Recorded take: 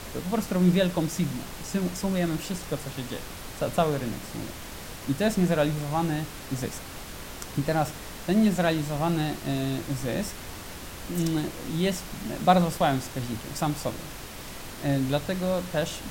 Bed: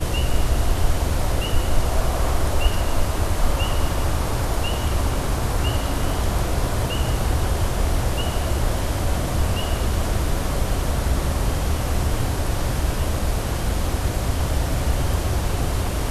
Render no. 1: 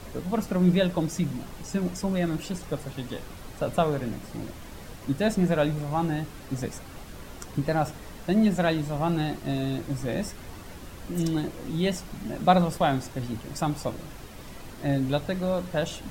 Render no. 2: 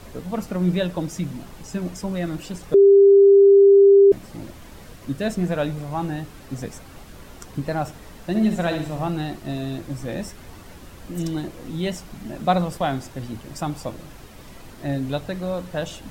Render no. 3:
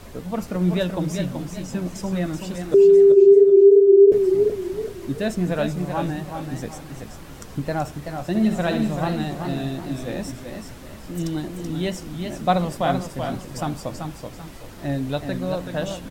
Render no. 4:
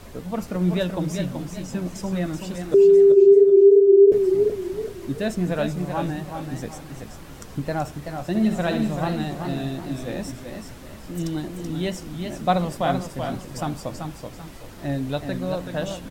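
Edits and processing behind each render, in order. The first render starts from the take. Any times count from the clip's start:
noise reduction 8 dB, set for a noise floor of -40 dBFS
2.74–4.12 s: bleep 397 Hz -8 dBFS; 4.86–5.43 s: band-stop 840 Hz, Q 7.3; 8.25–9.08 s: flutter echo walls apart 11 m, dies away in 0.52 s
feedback delay 397 ms, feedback 38%, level -15.5 dB; modulated delay 382 ms, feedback 31%, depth 101 cents, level -6.5 dB
trim -1 dB

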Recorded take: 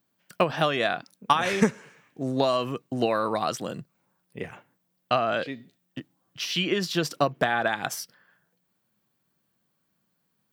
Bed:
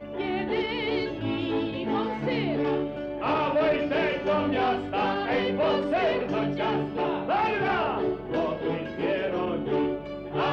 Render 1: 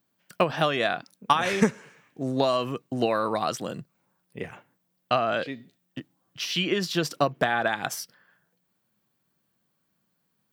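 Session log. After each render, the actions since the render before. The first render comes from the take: no audible change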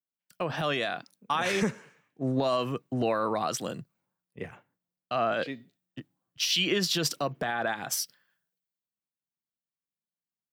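peak limiter -18 dBFS, peak gain reduction 10.5 dB; three bands expanded up and down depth 70%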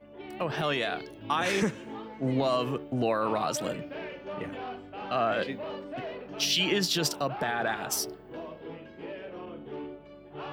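add bed -13.5 dB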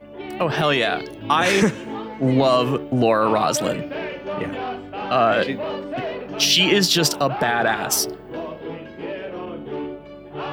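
trim +10 dB; peak limiter -2 dBFS, peak gain reduction 1 dB

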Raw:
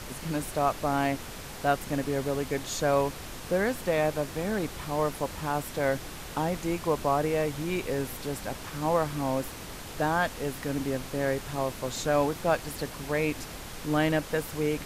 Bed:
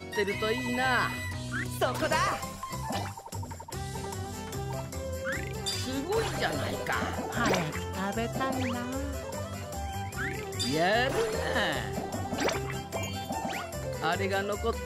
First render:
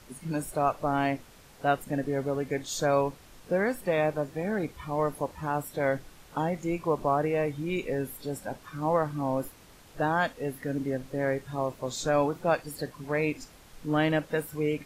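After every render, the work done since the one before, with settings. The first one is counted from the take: noise print and reduce 13 dB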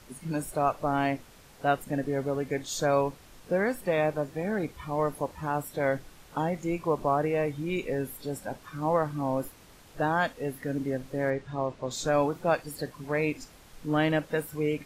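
11.30–11.91 s: distance through air 91 m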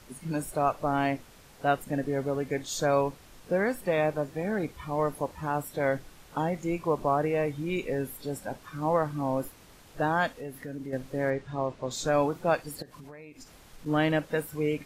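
10.33–10.93 s: compression 2:1, threshold -39 dBFS; 12.82–13.86 s: compression 16:1, threshold -42 dBFS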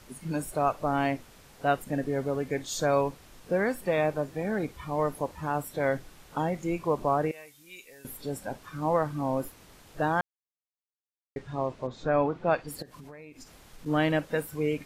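7.31–8.05 s: pre-emphasis filter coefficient 0.97; 10.21–11.36 s: mute; 11.86–12.67 s: low-pass 1.7 kHz -> 4.2 kHz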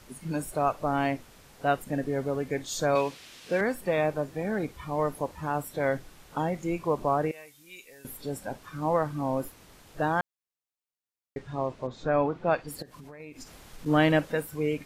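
2.95–3.61 s: frequency weighting D; 13.20–14.32 s: gain +3.5 dB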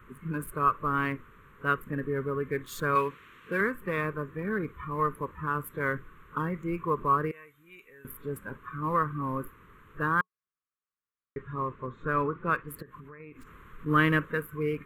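local Wiener filter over 9 samples; FFT filter 180 Hz 0 dB, 290 Hz -4 dB, 430 Hz +1 dB, 750 Hz -23 dB, 1.1 kHz +9 dB, 6 kHz -12 dB, 12 kHz +6 dB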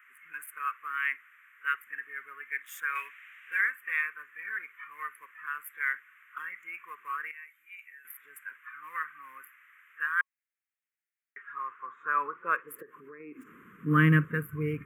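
high-pass sweep 2 kHz -> 91 Hz, 11.22–14.70 s; static phaser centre 1.8 kHz, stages 4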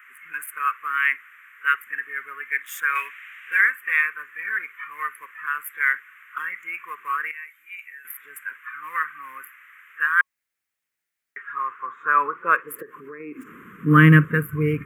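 trim +9.5 dB; peak limiter -1 dBFS, peak gain reduction 0.5 dB

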